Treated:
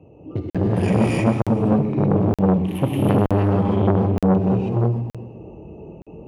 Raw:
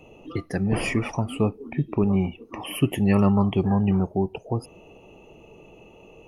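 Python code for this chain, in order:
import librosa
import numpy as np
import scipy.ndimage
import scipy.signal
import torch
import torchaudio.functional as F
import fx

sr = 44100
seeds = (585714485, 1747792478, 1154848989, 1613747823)

p1 = fx.wiener(x, sr, points=25)
p2 = scipy.signal.sosfilt(scipy.signal.butter(4, 65.0, 'highpass', fs=sr, output='sos'), p1)
p3 = fx.low_shelf(p2, sr, hz=260.0, db=9.5)
p4 = fx.echo_feedback(p3, sr, ms=126, feedback_pct=47, wet_db=-10)
p5 = fx.rev_gated(p4, sr, seeds[0], gate_ms=350, shape='rising', drr_db=-6.0)
p6 = fx.rider(p5, sr, range_db=10, speed_s=0.5)
p7 = p5 + (p6 * 10.0 ** (0.5 / 20.0))
p8 = fx.buffer_crackle(p7, sr, first_s=0.5, period_s=0.92, block=2048, kind='zero')
p9 = fx.transformer_sat(p8, sr, knee_hz=650.0)
y = p9 * 10.0 ** (-10.0 / 20.0)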